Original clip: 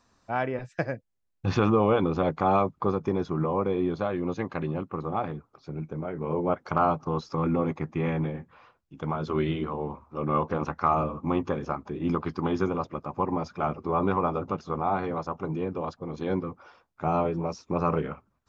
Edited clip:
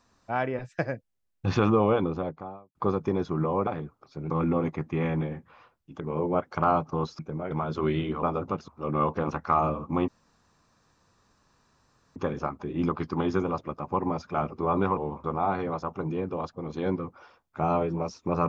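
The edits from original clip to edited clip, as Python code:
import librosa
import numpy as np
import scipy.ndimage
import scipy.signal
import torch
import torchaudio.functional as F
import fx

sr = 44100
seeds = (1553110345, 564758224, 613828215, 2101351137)

y = fx.studio_fade_out(x, sr, start_s=1.74, length_s=1.01)
y = fx.edit(y, sr, fx.cut(start_s=3.67, length_s=1.52),
    fx.swap(start_s=5.82, length_s=0.32, other_s=7.33, other_length_s=1.7),
    fx.swap(start_s=9.75, length_s=0.27, other_s=14.23, other_length_s=0.45),
    fx.insert_room_tone(at_s=11.42, length_s=2.08), tone=tone)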